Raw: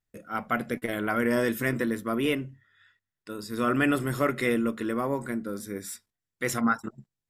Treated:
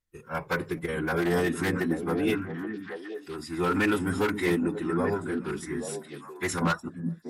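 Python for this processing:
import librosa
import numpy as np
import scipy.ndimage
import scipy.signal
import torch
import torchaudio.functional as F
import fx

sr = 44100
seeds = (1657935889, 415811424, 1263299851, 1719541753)

y = 10.0 ** (-17.0 / 20.0) * (np.abs((x / 10.0 ** (-17.0 / 20.0) + 3.0) % 4.0 - 2.0) - 1.0)
y = fx.pitch_keep_formants(y, sr, semitones=-5.5)
y = fx.echo_stepped(y, sr, ms=414, hz=200.0, octaves=1.4, feedback_pct=70, wet_db=-3.0)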